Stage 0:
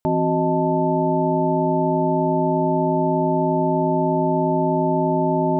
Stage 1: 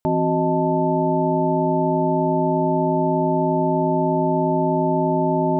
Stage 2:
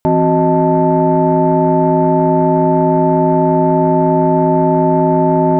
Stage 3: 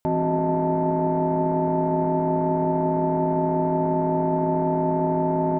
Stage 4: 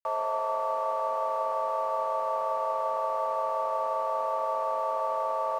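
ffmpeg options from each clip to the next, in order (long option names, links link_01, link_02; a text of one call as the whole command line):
ffmpeg -i in.wav -af anull out.wav
ffmpeg -i in.wav -af "acontrast=73,volume=1.5dB" out.wav
ffmpeg -i in.wav -filter_complex "[0:a]alimiter=limit=-11.5dB:level=0:latency=1:release=17,asplit=7[link_01][link_02][link_03][link_04][link_05][link_06][link_07];[link_02]adelay=94,afreqshift=38,volume=-17.5dB[link_08];[link_03]adelay=188,afreqshift=76,volume=-21.5dB[link_09];[link_04]adelay=282,afreqshift=114,volume=-25.5dB[link_10];[link_05]adelay=376,afreqshift=152,volume=-29.5dB[link_11];[link_06]adelay=470,afreqshift=190,volume=-33.6dB[link_12];[link_07]adelay=564,afreqshift=228,volume=-37.6dB[link_13];[link_01][link_08][link_09][link_10][link_11][link_12][link_13]amix=inputs=7:normalize=0,volume=-4.5dB" out.wav
ffmpeg -i in.wav -af "highpass=frequency=260:width_type=q:width=0.5412,highpass=frequency=260:width_type=q:width=1.307,lowpass=frequency=2100:width_type=q:width=0.5176,lowpass=frequency=2100:width_type=q:width=0.7071,lowpass=frequency=2100:width_type=q:width=1.932,afreqshift=270,aeval=exprs='sgn(val(0))*max(abs(val(0))-0.00501,0)':channel_layout=same,volume=-5dB" out.wav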